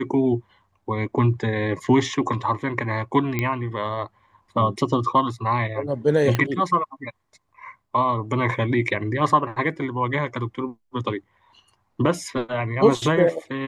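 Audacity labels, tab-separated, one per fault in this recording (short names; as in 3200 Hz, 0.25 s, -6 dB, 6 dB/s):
3.390000	3.390000	pop -10 dBFS
6.350000	6.350000	pop -8 dBFS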